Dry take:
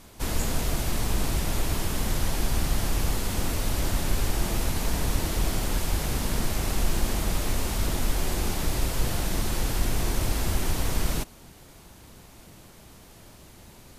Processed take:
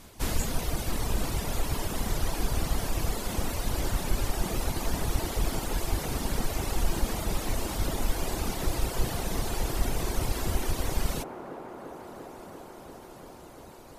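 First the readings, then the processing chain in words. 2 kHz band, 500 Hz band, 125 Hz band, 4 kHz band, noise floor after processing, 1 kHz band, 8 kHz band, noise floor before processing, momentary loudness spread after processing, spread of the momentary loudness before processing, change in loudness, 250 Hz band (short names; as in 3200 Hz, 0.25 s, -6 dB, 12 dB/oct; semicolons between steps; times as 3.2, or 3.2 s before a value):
-3.5 dB, -0.5 dB, -3.5 dB, -3.5 dB, -47 dBFS, -0.5 dB, -3.5 dB, -50 dBFS, 13 LU, 1 LU, -3.0 dB, -2.5 dB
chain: reverb removal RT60 1.9 s; on a send: band-limited delay 0.344 s, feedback 84%, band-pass 590 Hz, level -4.5 dB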